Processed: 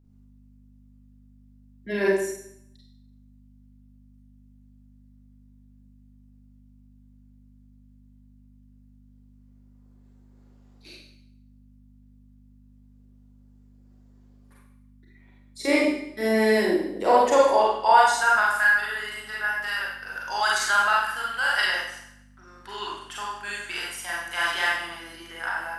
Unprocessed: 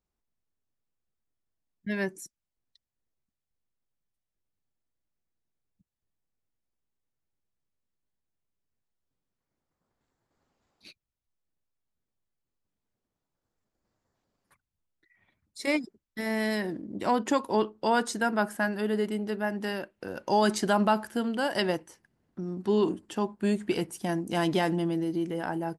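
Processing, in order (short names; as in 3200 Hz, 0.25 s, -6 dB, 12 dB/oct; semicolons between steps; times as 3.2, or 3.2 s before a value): high-pass sweep 350 Hz -> 1400 Hz, 16.68–18.59; buzz 50 Hz, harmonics 5, -59 dBFS -6 dB/oct; Schroeder reverb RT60 0.72 s, combs from 32 ms, DRR -5 dB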